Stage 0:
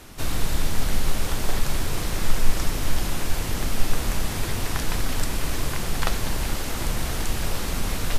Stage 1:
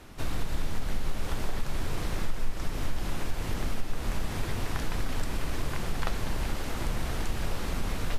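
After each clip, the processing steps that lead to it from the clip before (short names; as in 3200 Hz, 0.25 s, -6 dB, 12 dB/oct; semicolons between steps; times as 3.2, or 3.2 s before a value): high shelf 4300 Hz -9 dB; compressor 3:1, threshold -19 dBFS, peak gain reduction 9 dB; gain -3.5 dB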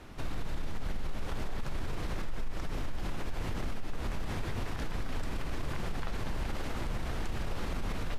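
limiter -25 dBFS, peak gain reduction 10 dB; high shelf 6000 Hz -9 dB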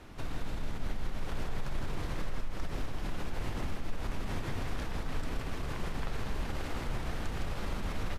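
echo 0.162 s -5.5 dB; reverb RT60 1.8 s, pre-delay 37 ms, DRR 11 dB; gain -1.5 dB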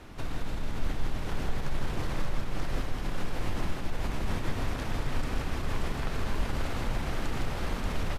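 echo 0.583 s -4 dB; gain +3 dB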